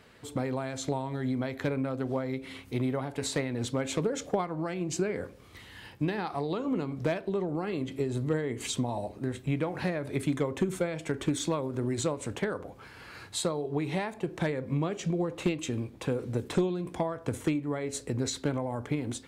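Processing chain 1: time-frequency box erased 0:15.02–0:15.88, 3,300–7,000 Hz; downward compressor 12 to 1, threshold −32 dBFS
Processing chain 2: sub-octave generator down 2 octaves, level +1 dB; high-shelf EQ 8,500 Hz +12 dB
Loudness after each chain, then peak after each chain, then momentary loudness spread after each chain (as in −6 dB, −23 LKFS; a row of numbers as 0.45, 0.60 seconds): −38.0, −30.5 LKFS; −19.5, −14.0 dBFS; 3, 5 LU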